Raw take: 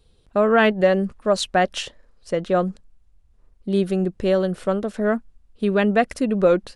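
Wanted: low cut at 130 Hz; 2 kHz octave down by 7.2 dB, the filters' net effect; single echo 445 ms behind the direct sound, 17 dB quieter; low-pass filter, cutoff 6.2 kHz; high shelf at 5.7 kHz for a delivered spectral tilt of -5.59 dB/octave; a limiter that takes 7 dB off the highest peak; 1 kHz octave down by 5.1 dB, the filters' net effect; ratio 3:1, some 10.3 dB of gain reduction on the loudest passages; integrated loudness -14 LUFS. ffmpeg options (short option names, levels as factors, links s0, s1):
-af "highpass=130,lowpass=6200,equalizer=f=1000:t=o:g=-7,equalizer=f=2000:t=o:g=-6,highshelf=f=5700:g=-5.5,acompressor=threshold=0.0398:ratio=3,alimiter=limit=0.0668:level=0:latency=1,aecho=1:1:445:0.141,volume=8.91"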